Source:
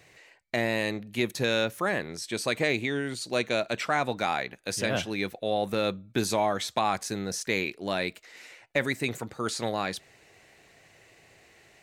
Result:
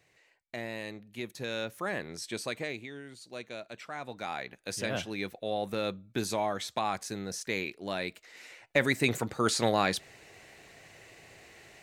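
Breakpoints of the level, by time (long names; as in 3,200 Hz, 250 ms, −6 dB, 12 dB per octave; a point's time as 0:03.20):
0:01.34 −11 dB
0:02.24 −3 dB
0:02.91 −14.5 dB
0:03.91 −14.5 dB
0:04.55 −5 dB
0:08.03 −5 dB
0:09.14 +3.5 dB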